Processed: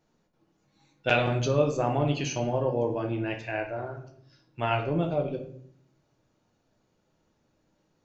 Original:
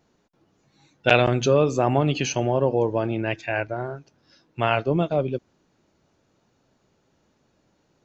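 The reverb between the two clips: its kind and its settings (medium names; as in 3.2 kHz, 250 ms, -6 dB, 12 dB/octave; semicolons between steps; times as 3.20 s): simulated room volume 96 m³, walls mixed, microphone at 0.58 m; trim -7.5 dB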